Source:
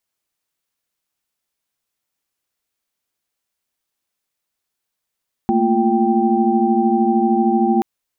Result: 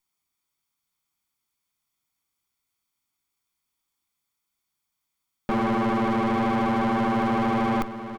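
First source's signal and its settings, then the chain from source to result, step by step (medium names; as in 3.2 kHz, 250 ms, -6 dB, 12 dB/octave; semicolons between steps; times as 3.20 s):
chord A3/A#3/F4/G5 sine, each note -18.5 dBFS 2.33 s
comb filter that takes the minimum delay 0.89 ms; saturation -20.5 dBFS; on a send: delay 875 ms -11.5 dB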